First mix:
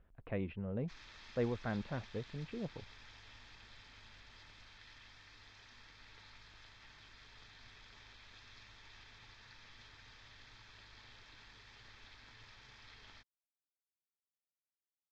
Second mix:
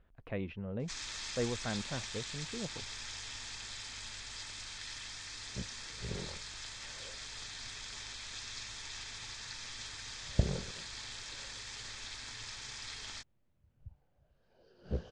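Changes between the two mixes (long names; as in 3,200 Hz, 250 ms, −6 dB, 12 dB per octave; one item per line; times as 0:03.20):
first sound +8.0 dB
second sound: unmuted
master: remove high-frequency loss of the air 240 metres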